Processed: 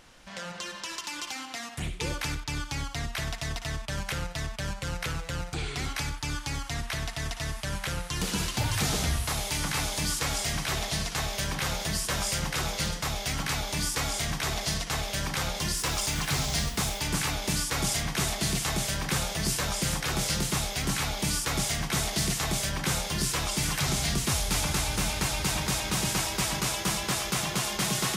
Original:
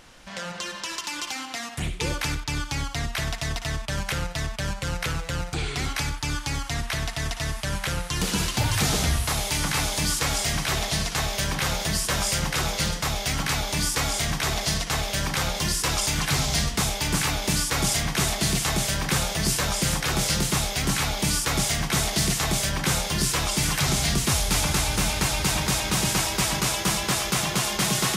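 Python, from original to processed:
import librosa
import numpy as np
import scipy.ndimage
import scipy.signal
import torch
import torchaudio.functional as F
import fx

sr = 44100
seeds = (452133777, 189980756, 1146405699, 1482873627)

y = fx.dmg_noise_colour(x, sr, seeds[0], colour='white', level_db=-44.0, at=(15.76, 16.99), fade=0.02)
y = F.gain(torch.from_numpy(y), -4.5).numpy()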